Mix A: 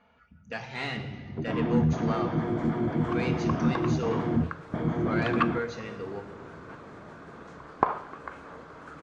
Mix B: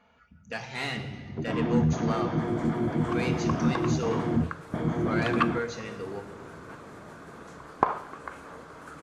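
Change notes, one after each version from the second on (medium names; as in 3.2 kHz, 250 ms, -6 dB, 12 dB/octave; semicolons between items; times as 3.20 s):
master: remove distance through air 100 m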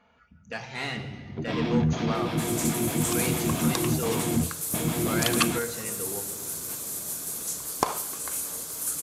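first sound: remove Savitzky-Golay filter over 41 samples; second sound: remove resonant low-pass 1.5 kHz, resonance Q 1.5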